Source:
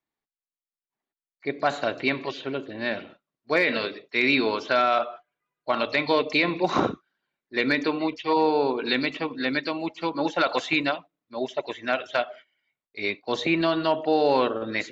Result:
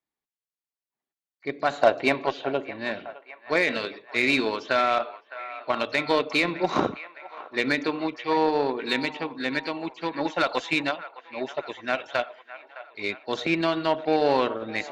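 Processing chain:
0:01.81–0:02.71: parametric band 730 Hz +11 dB 1.3 octaves
harmonic generator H 7 −27 dB, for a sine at −6 dBFS
delay with a band-pass on its return 611 ms, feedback 59%, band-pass 1,300 Hz, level −14 dB

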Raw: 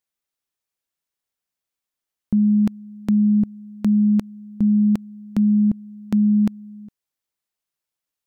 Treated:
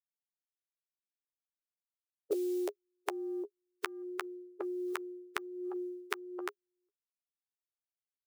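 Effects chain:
spectral dynamics exaggerated over time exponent 3
high-pass filter 50 Hz 12 dB per octave
parametric band 260 Hz +10.5 dB 0.36 octaves
0:04.02–0:06.39: hum removal 104.3 Hz, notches 3
downward compressor 12 to 1, threshold −23 dBFS, peak gain reduction 11 dB
brickwall limiter −25 dBFS, peak gain reduction 10.5 dB
high-pass filter sweep 100 Hz → 1,100 Hz, 0:00.69–0:03.84
frequency shifter +150 Hz
floating-point word with a short mantissa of 6 bits
double-tracking delay 12 ms −9 dB
multiband upward and downward compressor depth 100%
level +12 dB

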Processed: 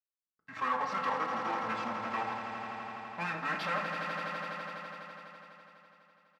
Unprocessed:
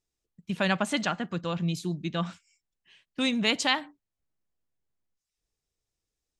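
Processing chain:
comb filter 2.5 ms, depth 83%
output level in coarse steps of 16 dB
leveller curve on the samples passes 5
pitch shifter −7 semitones
resonant band-pass 1,100 Hz, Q 1.8
on a send: echo that builds up and dies away 83 ms, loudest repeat 5, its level −9.5 dB
on the sum: rectangular room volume 530 cubic metres, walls furnished, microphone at 1.5 metres
level −4.5 dB

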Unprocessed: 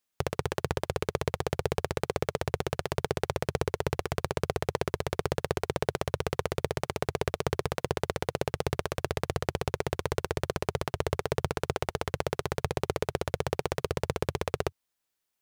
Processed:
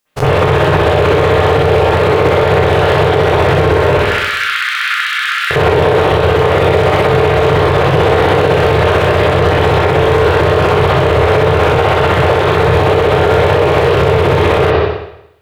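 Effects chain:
every bin's largest magnitude spread in time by 60 ms
0:03.93–0:05.51: Butterworth high-pass 1,300 Hz 72 dB per octave
convolution reverb RT60 0.80 s, pre-delay 51 ms, DRR −15.5 dB
boost into a limiter +7.5 dB
level −1 dB

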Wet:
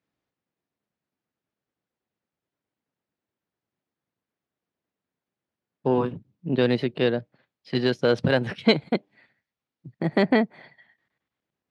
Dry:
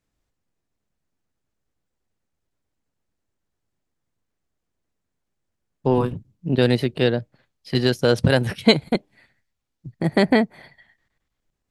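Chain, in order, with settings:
soft clipping −3 dBFS, distortion −25 dB
band-pass filter 150–3,900 Hz
level −2 dB

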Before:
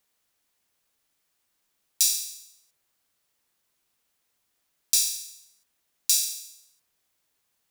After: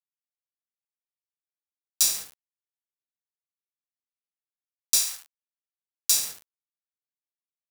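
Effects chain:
bit reduction 5 bits
0:04.99–0:06.11: high-pass filter 820 Hz 12 dB per octave
expander for the loud parts 1.5 to 1, over −35 dBFS
level +1 dB

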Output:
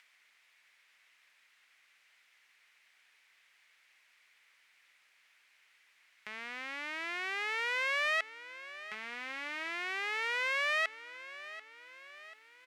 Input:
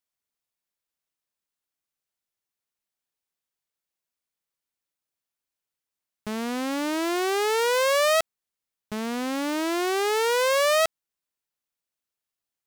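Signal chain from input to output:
upward compression, threshold −28 dBFS
resonant band-pass 2,100 Hz, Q 3
repeating echo 738 ms, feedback 52%, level −15.5 dB

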